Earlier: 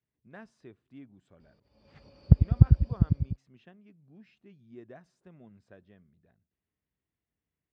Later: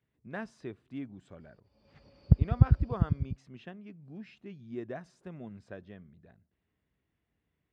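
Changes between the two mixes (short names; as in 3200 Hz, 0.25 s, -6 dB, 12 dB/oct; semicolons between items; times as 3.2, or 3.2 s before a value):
speech +9.0 dB; background -3.5 dB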